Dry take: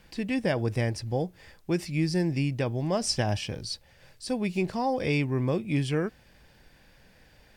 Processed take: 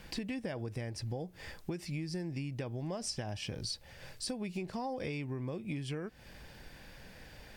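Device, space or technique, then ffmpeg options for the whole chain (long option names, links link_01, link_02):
serial compression, peaks first: -af "acompressor=threshold=-35dB:ratio=6,acompressor=threshold=-44dB:ratio=2,volume=5dB"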